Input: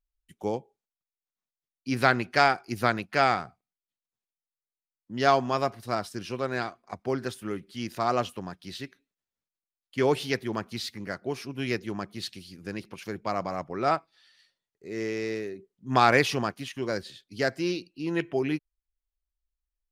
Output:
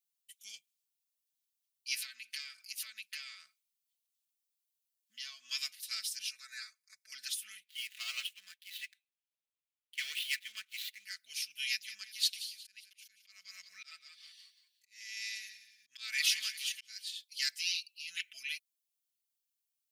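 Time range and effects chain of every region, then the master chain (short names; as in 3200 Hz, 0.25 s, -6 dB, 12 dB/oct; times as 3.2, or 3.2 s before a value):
1.99–5.51 compressor, threshold -35 dBFS + small resonant body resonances 320/590/1100 Hz, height 13 dB, ringing for 40 ms
6.3–7.12 high shelf 8300 Hz -6.5 dB + fixed phaser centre 820 Hz, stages 6
7.63–11.03 median filter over 9 samples + tone controls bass -8 dB, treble -8 dB + sample leveller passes 1
11.67–17.07 frequency-shifting echo 0.18 s, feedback 42%, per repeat -60 Hz, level -14 dB + auto swell 0.425 s
whole clip: inverse Chebyshev high-pass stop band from 970 Hz, stop band 50 dB; high shelf 7900 Hz +7.5 dB; comb 4.6 ms, depth 88%; gain +1.5 dB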